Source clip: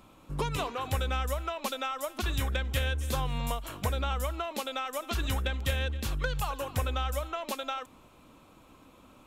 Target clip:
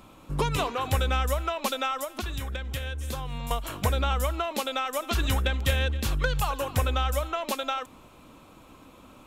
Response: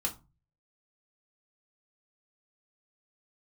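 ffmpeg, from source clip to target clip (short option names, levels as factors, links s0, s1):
-filter_complex "[0:a]asettb=1/sr,asplit=3[s0][s1][s2];[s0]atrim=end=2.024[s3];[s1]atrim=start=2.02:end=3.51,asetpts=PTS-STARTPTS,afade=t=in:d=0.004:c=qsin,afade=t=out:st=1.486:d=0.004:c=qsin,acompressor=threshold=0.0178:ratio=6[s4];[s2]atrim=start=3.506[s5];[s3][s4]acrossfade=d=0.004:c1=hsin:c2=qsin[s6];[s6][s5]acrossfade=d=0.004:c1=qsin:c2=hsin,volume=1.78"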